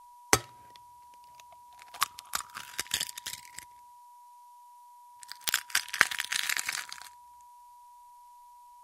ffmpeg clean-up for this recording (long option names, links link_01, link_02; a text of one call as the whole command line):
ffmpeg -i in.wav -af "adeclick=threshold=4,bandreject=frequency=970:width=30,agate=range=-21dB:threshold=-46dB" out.wav